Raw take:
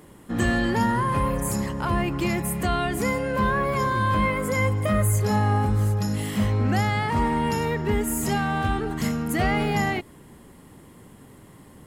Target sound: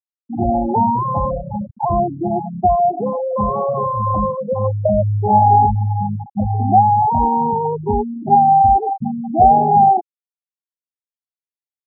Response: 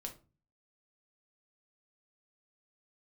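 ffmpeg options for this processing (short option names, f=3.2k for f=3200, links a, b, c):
-af "lowpass=f=780:t=q:w=6.6,afftfilt=real='re*gte(hypot(re,im),0.316)':imag='im*gte(hypot(re,im),0.316)':win_size=1024:overlap=0.75,volume=3.5dB"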